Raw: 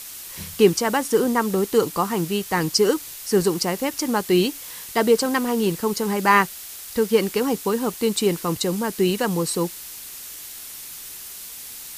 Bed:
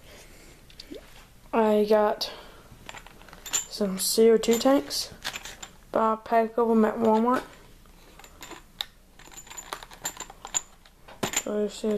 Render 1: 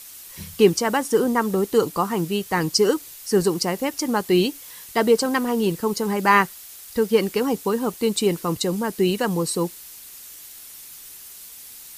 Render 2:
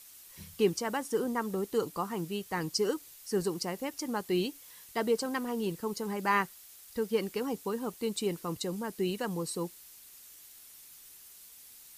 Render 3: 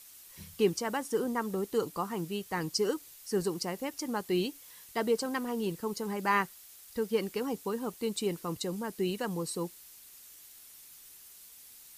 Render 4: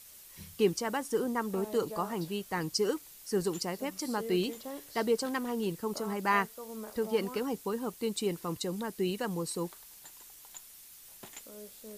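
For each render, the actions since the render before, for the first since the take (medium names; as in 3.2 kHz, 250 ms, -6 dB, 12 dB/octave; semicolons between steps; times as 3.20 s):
noise reduction 6 dB, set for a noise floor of -38 dBFS
trim -11.5 dB
no audible change
add bed -21.5 dB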